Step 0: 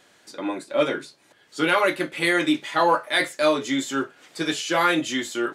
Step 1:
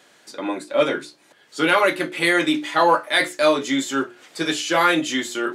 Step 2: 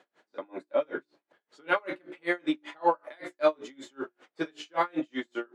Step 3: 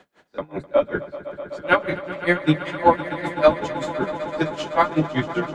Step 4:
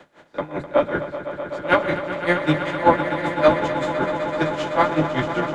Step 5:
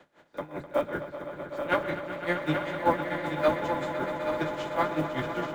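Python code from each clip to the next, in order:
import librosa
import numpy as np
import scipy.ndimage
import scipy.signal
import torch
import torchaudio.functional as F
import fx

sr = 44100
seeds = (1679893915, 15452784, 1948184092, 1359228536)

y1 = scipy.signal.sosfilt(scipy.signal.butter(2, 130.0, 'highpass', fs=sr, output='sos'), x)
y1 = fx.hum_notches(y1, sr, base_hz=60, count=6)
y1 = y1 * librosa.db_to_amplitude(3.0)
y2 = fx.bandpass_q(y1, sr, hz=610.0, q=0.51)
y2 = y2 * 10.0 ** (-34 * (0.5 - 0.5 * np.cos(2.0 * np.pi * 5.2 * np.arange(len(y2)) / sr)) / 20.0)
y2 = y2 * librosa.db_to_amplitude(-3.0)
y3 = fx.octave_divider(y2, sr, octaves=1, level_db=-1.0)
y3 = fx.echo_swell(y3, sr, ms=127, loudest=5, wet_db=-16.5)
y3 = y3 * librosa.db_to_amplitude(8.5)
y4 = fx.bin_compress(y3, sr, power=0.6)
y4 = fx.band_widen(y4, sr, depth_pct=40)
y4 = y4 * librosa.db_to_amplitude(-3.5)
y5 = fx.block_float(y4, sr, bits=7)
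y5 = y5 + 10.0 ** (-7.5 / 20.0) * np.pad(y5, (int(829 * sr / 1000.0), 0))[:len(y5)]
y5 = y5 * librosa.db_to_amplitude(-9.0)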